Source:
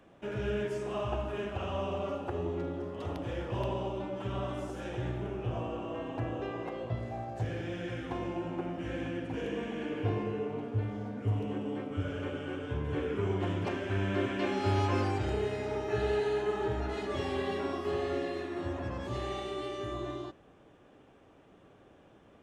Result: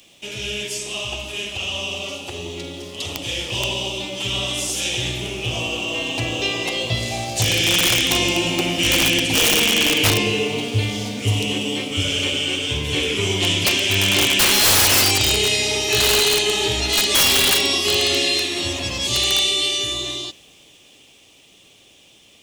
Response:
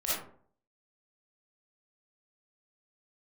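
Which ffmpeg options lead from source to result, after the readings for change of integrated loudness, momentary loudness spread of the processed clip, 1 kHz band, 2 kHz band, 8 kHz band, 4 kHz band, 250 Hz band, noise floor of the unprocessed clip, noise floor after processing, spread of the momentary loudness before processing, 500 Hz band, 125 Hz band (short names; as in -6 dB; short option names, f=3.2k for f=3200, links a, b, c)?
+17.0 dB, 13 LU, +9.0 dB, +21.0 dB, n/a, +31.0 dB, +9.0 dB, -59 dBFS, -51 dBFS, 6 LU, +7.5 dB, +8.0 dB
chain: -af "aexciter=amount=11.4:drive=8.4:freq=2.4k,dynaudnorm=f=210:g=31:m=16dB,aeval=exprs='(mod(2.66*val(0)+1,2)-1)/2.66':c=same"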